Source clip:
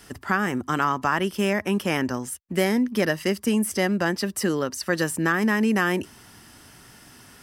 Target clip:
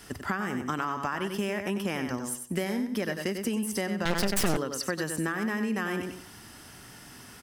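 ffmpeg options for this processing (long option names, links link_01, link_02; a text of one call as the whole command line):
ffmpeg -i in.wav -filter_complex "[0:a]asplit=2[link_01][link_02];[link_02]aecho=0:1:94|188|282:0.398|0.0955|0.0229[link_03];[link_01][link_03]amix=inputs=2:normalize=0,acompressor=threshold=-27dB:ratio=6,asettb=1/sr,asplit=3[link_04][link_05][link_06];[link_04]atrim=end=4.054[link_07];[link_05]atrim=start=4.05:end=4.57,asetpts=PTS-STARTPTS,afade=type=in:duration=0.004:curve=qsin,afade=type=out:start_time=0.516:duration=0.004:curve=qsin,aeval=exprs='0.119*(cos(1*acos(clip(val(0)/0.119,-1,1)))-cos(1*PI/2))+0.0531*(cos(6*acos(clip(val(0)/0.119,-1,1)))-cos(6*PI/2))':channel_layout=same[link_08];[link_06]atrim=start=4.566[link_09];[link_07][link_08]acrossfade=duration=0.004:curve1=hsin:curve2=qsin[link_10];[link_10][link_09]acrossfade=duration=0.004:curve1=qsin:curve2=hsin" out.wav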